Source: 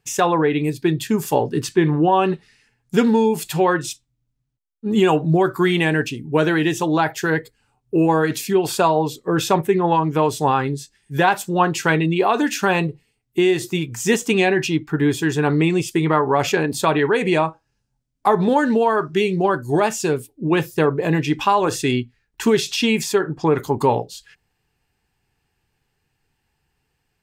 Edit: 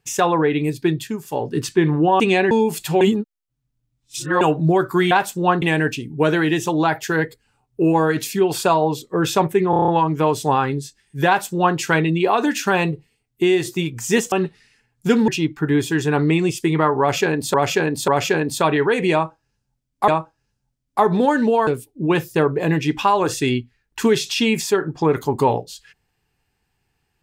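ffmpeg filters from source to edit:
-filter_complex "[0:a]asplit=21[a][b][c][d][e][f][g][h][i][j][k][l][m][n][o][p][q][r][s][t][u];[a]atrim=end=1.23,asetpts=PTS-STARTPTS,afade=t=out:st=0.88:d=0.35:silence=0.237137[v];[b]atrim=start=1.23:end=1.24,asetpts=PTS-STARTPTS,volume=-12.5dB[w];[c]atrim=start=1.24:end=2.202,asetpts=PTS-STARTPTS,afade=t=in:d=0.35:silence=0.237137[x];[d]atrim=start=14.278:end=14.592[y];[e]atrim=start=3.158:end=3.662[z];[f]atrim=start=3.658:end=5.062,asetpts=PTS-STARTPTS,areverse[aa];[g]atrim=start=5.058:end=5.762[ab];[h]atrim=start=11.228:end=11.742[ac];[i]atrim=start=5.758:end=9.872[ad];[j]atrim=start=9.838:end=9.872[ae];[k]atrim=start=9.838:end=9.872[af];[l]atrim=start=9.838:end=9.872[ag];[m]atrim=start=9.838:end=9.872[ah];[n]atrim=start=9.838:end=9.872[ai];[o]atrim=start=9.838:end=14.282[aj];[p]atrim=start=2.198:end=3.162[ak];[q]atrim=start=14.588:end=16.852[al];[r]atrim=start=16.308:end=16.852[am];[s]atrim=start=16.308:end=18.312[an];[t]atrim=start=17.358:end=18.952[ao];[u]atrim=start=20.088[ap];[v][w][x]concat=n=3:v=0:a=1[aq];[aq][y]acrossfade=d=0.004:c1=hsin:c2=hsin[ar];[ar][z]acrossfade=d=0.004:c1=hsin:c2=hsin[as];[as][aa]acrossfade=d=0.004:c1=hsin:c2=hsin[at];[at][ab]acrossfade=d=0.004:c1=hsin:c2=hsin[au];[au][ac]acrossfade=d=0.004:c1=hsin:c2=hsin[av];[av][ad]acrossfade=d=0.004:c1=hsin:c2=hsin[aw];[aw][ae]acrossfade=d=0.004:c1=hsin:c2=hsin[ax];[ax][af]acrossfade=d=0.004:c1=hsin:c2=hsin[ay];[ay][ag]acrossfade=d=0.004:c1=hsin:c2=hsin[az];[az][ah]acrossfade=d=0.004:c1=hsin:c2=hsin[ba];[ba][ai]acrossfade=d=0.004:c1=hsin:c2=hsin[bb];[bb][aj]acrossfade=d=0.004:c1=hsin:c2=hsin[bc];[bc][ak]acrossfade=d=0.004:c1=hsin:c2=hsin[bd];[bd][al]acrossfade=d=0.004:c1=hsin:c2=hsin[be];[be][am]acrossfade=d=0.004:c1=hsin:c2=hsin[bf];[bf][an]acrossfade=d=0.004:c1=hsin:c2=hsin[bg];[bg][ao]acrossfade=d=0.004:c1=hsin:c2=hsin[bh];[bh][ap]acrossfade=d=0.004:c1=hsin:c2=hsin"

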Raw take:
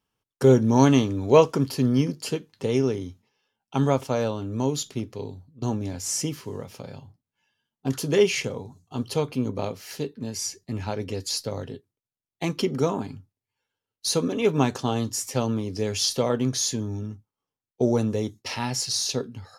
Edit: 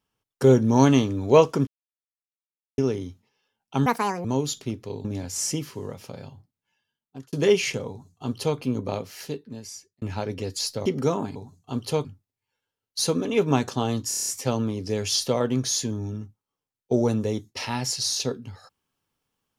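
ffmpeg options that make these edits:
-filter_complex "[0:a]asplit=17[a][b][c][d][e][f][g][h][i][j][k][l][m][n][o][p][q];[a]atrim=end=1.67,asetpts=PTS-STARTPTS,afade=t=out:st=1.666:d=0.004:c=hsin[r];[b]atrim=start=1.67:end=2.78,asetpts=PTS-STARTPTS,volume=0[s];[c]atrim=start=2.78:end=3.864,asetpts=PTS-STARTPTS,afade=t=in:d=0.004:c=hsin[t];[d]atrim=start=3.86:end=4.54,asetpts=PTS-STARTPTS,asetrate=77616,aresample=44100[u];[e]atrim=start=4.536:end=5.342[v];[f]atrim=start=5.748:end=8.03,asetpts=PTS-STARTPTS,afade=t=out:st=1.222:d=1.06:c=qsin[w];[g]atrim=start=8.03:end=10.72,asetpts=PTS-STARTPTS,afade=t=in:d=0.004:c=hsin,afade=t=out:st=1.8:d=0.89[x];[h]atrim=start=10.72:end=11.562,asetpts=PTS-STARTPTS,afade=t=in:d=0.004:c=hsin[y];[i]atrim=start=12.618:end=13.122[z];[j]atrim=start=8.588:end=9.282[aa];[k]atrim=start=13.118:end=15.192[ab];[l]atrim=start=15.158:end=15.192[ac];[m]atrim=start=15.158:end=15.192[ad];[n]atrim=start=15.158:end=15.192[ae];[o]atrim=start=15.158:end=15.192[af];[p]atrim=start=15.158:end=15.192[ag];[q]atrim=start=15.158[ah];[r][s][t]concat=n=3:v=0:a=1[ai];[ai][u]acrossfade=d=0.004:c1=hsin:c2=hsin[aj];[aj][v]acrossfade=d=0.004:c1=hsin:c2=hsin[ak];[w][x][y]concat=n=3:v=0:a=1[al];[ak][al]acrossfade=d=0.004:c1=hsin:c2=hsin[am];[am][z]acrossfade=d=0.004:c1=hsin:c2=hsin[an];[an][aa]acrossfade=d=0.004:c1=hsin:c2=hsin[ao];[ao][ab]acrossfade=d=0.004:c1=hsin:c2=hsin[ap];[ap][ac]acrossfade=d=0.004:c1=hsin:c2=hsin[aq];[aq][ad]acrossfade=d=0.004:c1=hsin:c2=hsin[ar];[ar][ae]acrossfade=d=0.004:c1=hsin:c2=hsin[as];[as][af]acrossfade=d=0.004:c1=hsin:c2=hsin[at];[at][ag]acrossfade=d=0.004:c1=hsin:c2=hsin[au];[au][ah]acrossfade=d=0.004:c1=hsin:c2=hsin"

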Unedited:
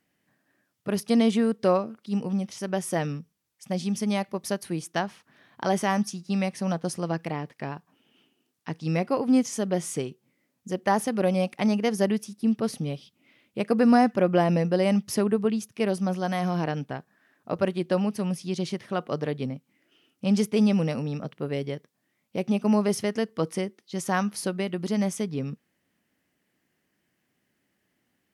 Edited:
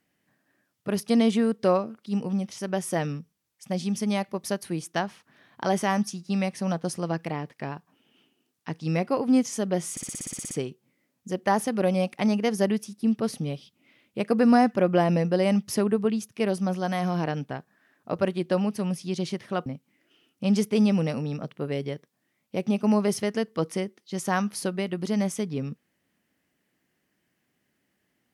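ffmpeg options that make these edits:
-filter_complex "[0:a]asplit=12[a][b][c][d][e][f][g][h][i][j][k][l];[a]atrim=end=9.972[m];[b]atrim=start=9.908:end=9.972[n];[c]atrim=start=9.908:end=9.972[o];[d]atrim=start=9.908:end=9.972[p];[e]atrim=start=9.908:end=9.972[q];[f]atrim=start=9.908:end=9.972[r];[g]atrim=start=9.908:end=9.972[s];[h]atrim=start=9.908:end=9.972[t];[i]atrim=start=9.908:end=9.972[u];[j]atrim=start=9.908:end=9.972[v];[k]atrim=start=9.908:end=19.062[w];[l]atrim=start=19.468[x];[m][n]acrossfade=d=0.004:c1=hsin:c2=hsin[y];[y][o]acrossfade=d=0.004:c1=hsin:c2=hsin[z];[z][p]acrossfade=d=0.004:c1=hsin:c2=hsin[aa];[aa][q]acrossfade=d=0.004:c1=hsin:c2=hsin[ab];[ab][r]acrossfade=d=0.004:c1=hsin:c2=hsin[ac];[ac][s]acrossfade=d=0.004:c1=hsin:c2=hsin[ad];[ad][t]acrossfade=d=0.004:c1=hsin:c2=hsin[ae];[ae][u]acrossfade=d=0.004:c1=hsin:c2=hsin[af];[af][v]acrossfade=d=0.004:c1=hsin:c2=hsin[ag];[ag][w]acrossfade=d=0.004:c1=hsin:c2=hsin[ah];[ah][x]acrossfade=d=0.004:c1=hsin:c2=hsin"

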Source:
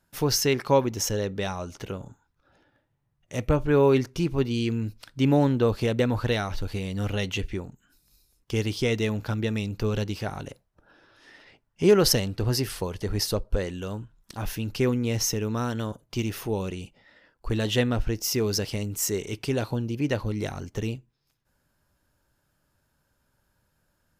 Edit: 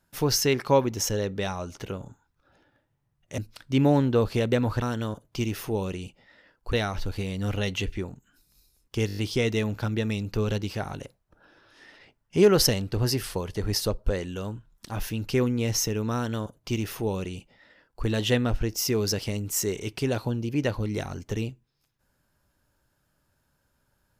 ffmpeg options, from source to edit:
-filter_complex "[0:a]asplit=9[a][b][c][d][e][f][g][h][i];[a]atrim=end=3.382[j];[b]atrim=start=4.848:end=6.292[k];[c]atrim=start=15.598:end=17.512[l];[d]atrim=start=6.288:end=8.652[m];[e]atrim=start=8.628:end=8.652[n];[f]atrim=start=8.628:end=8.652[o];[g]atrim=start=8.628:end=8.652[p];[h]atrim=start=8.628:end=8.652[q];[i]atrim=start=8.628[r];[j][k]acrossfade=d=0.004:c1=hsin:c2=hsin[s];[s][l]acrossfade=d=0.004:c1=hsin:c2=hsin[t];[t][m]acrossfade=d=0.004:c1=hsin:c2=hsin[u];[u][n]acrossfade=d=0.004:c1=hsin:c2=hsin[v];[v][o]acrossfade=d=0.004:c1=hsin:c2=hsin[w];[w][p]acrossfade=d=0.004:c1=hsin:c2=hsin[x];[x][q]acrossfade=d=0.004:c1=hsin:c2=hsin[y];[y][r]acrossfade=d=0.004:c1=hsin:c2=hsin"

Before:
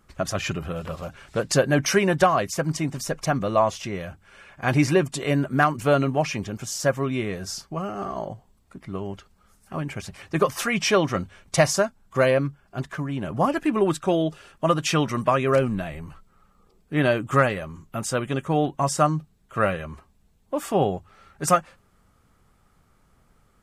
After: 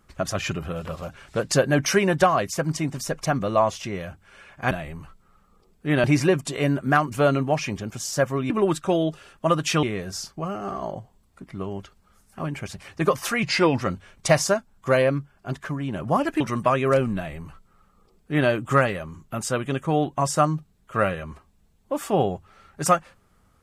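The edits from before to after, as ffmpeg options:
-filter_complex "[0:a]asplit=8[a][b][c][d][e][f][g][h];[a]atrim=end=4.712[i];[b]atrim=start=15.778:end=17.112[j];[c]atrim=start=4.708:end=7.172[k];[d]atrim=start=13.688:end=15.022[l];[e]atrim=start=7.168:end=10.774[m];[f]atrim=start=10.77:end=11.1,asetpts=PTS-STARTPTS,asetrate=37926,aresample=44100,atrim=end_sample=16922,asetpts=PTS-STARTPTS[n];[g]atrim=start=11.096:end=13.692[o];[h]atrim=start=15.018[p];[i][j]acrossfade=d=0.004:c1=hsin:c2=hsin[q];[q][k]acrossfade=d=0.004:c1=hsin:c2=hsin[r];[r][l]acrossfade=d=0.004:c1=hsin:c2=hsin[s];[s][m]acrossfade=d=0.004:c1=hsin:c2=hsin[t];[t][n]acrossfade=d=0.004:c1=hsin:c2=hsin[u];[u][o]acrossfade=d=0.004:c1=hsin:c2=hsin[v];[v][p]acrossfade=d=0.004:c1=hsin:c2=hsin"

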